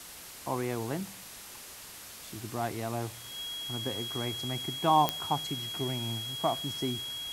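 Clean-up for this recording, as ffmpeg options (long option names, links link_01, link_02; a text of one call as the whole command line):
ffmpeg -i in.wav -af "adeclick=threshold=4,bandreject=frequency=3300:width=30,afwtdn=0.0056" out.wav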